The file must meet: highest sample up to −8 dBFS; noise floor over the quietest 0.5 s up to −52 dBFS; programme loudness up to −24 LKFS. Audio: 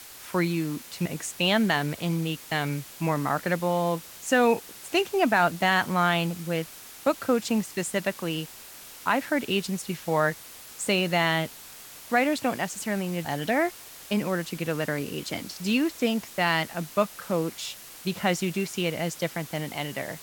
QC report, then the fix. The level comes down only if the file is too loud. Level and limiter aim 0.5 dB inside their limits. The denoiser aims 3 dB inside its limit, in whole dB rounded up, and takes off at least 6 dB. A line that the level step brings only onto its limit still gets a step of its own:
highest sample −8.5 dBFS: in spec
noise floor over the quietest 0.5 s −45 dBFS: out of spec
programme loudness −27.0 LKFS: in spec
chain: broadband denoise 10 dB, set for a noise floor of −45 dBFS

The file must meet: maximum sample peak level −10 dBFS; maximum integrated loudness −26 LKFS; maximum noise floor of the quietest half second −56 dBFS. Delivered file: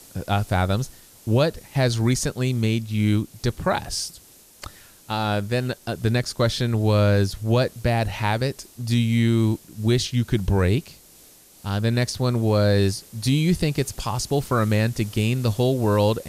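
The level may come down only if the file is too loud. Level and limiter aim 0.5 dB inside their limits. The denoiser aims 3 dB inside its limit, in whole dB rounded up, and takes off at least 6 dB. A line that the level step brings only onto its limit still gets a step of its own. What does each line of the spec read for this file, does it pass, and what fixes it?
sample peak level −8.0 dBFS: out of spec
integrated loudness −22.5 LKFS: out of spec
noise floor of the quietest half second −50 dBFS: out of spec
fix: broadband denoise 6 dB, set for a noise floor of −50 dBFS
level −4 dB

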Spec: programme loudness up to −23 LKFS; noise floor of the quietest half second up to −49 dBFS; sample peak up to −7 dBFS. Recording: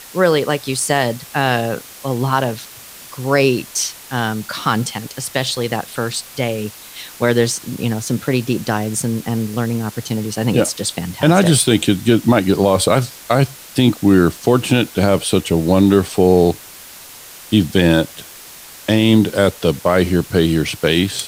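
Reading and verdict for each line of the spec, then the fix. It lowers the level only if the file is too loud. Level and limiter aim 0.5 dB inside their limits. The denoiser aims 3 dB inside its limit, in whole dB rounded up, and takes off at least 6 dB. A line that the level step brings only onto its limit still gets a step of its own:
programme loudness −17.0 LKFS: out of spec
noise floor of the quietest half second −38 dBFS: out of spec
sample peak −1.5 dBFS: out of spec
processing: broadband denoise 8 dB, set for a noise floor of −38 dBFS
level −6.5 dB

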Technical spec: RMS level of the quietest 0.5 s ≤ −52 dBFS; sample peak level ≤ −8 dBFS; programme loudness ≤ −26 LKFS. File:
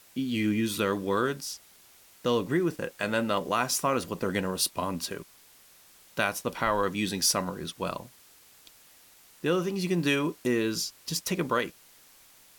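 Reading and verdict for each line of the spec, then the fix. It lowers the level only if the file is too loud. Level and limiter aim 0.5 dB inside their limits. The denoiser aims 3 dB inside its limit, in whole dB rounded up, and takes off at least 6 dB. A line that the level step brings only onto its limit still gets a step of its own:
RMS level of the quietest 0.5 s −57 dBFS: in spec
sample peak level −10.5 dBFS: in spec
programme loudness −29.0 LKFS: in spec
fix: no processing needed

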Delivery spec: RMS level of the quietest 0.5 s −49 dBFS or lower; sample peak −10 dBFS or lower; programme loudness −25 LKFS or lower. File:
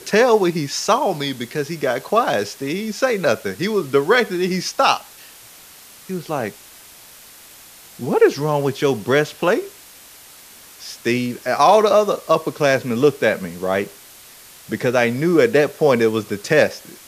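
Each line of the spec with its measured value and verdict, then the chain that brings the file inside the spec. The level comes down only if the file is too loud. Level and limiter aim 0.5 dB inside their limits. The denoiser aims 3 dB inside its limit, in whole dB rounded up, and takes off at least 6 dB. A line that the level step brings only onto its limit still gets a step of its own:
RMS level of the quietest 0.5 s −43 dBFS: out of spec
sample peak −2.5 dBFS: out of spec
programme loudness −18.5 LKFS: out of spec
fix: level −7 dB
brickwall limiter −10.5 dBFS

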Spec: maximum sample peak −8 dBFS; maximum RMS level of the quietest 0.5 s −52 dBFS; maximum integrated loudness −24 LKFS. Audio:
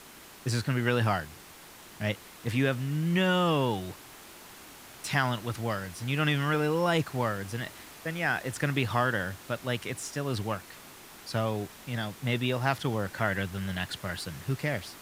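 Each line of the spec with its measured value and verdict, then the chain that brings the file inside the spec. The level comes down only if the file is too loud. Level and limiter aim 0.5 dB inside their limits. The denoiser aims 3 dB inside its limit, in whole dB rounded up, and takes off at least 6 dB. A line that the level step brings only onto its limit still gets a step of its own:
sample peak −9.5 dBFS: in spec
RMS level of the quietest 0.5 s −50 dBFS: out of spec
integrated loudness −30.0 LKFS: in spec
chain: broadband denoise 6 dB, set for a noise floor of −50 dBFS

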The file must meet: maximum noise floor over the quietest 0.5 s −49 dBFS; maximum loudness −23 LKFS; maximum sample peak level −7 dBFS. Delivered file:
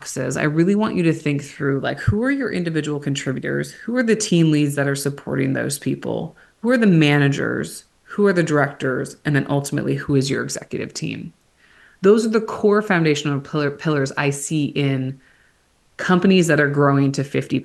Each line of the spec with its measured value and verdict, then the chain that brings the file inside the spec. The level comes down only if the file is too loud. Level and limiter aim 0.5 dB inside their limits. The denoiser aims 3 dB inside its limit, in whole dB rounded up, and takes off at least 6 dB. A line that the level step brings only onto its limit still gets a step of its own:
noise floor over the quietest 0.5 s −59 dBFS: in spec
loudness −19.5 LKFS: out of spec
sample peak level −3.5 dBFS: out of spec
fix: level −4 dB

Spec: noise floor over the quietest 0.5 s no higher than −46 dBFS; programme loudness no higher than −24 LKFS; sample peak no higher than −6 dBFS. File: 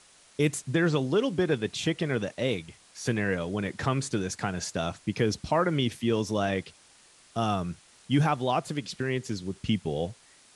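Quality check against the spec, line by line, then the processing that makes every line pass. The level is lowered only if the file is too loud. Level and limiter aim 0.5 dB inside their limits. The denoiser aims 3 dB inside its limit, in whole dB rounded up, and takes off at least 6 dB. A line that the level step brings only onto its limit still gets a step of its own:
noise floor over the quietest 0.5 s −58 dBFS: in spec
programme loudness −29.0 LKFS: in spec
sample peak −11.5 dBFS: in spec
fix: no processing needed

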